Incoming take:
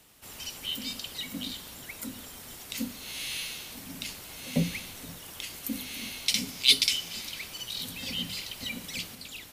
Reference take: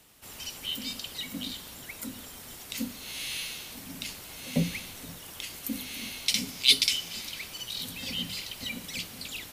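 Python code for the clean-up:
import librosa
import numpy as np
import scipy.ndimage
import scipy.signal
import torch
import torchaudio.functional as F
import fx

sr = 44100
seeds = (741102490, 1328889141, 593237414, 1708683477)

y = fx.fix_declip(x, sr, threshold_db=-8.0)
y = fx.gain(y, sr, db=fx.steps((0.0, 0.0), (9.15, 4.0)))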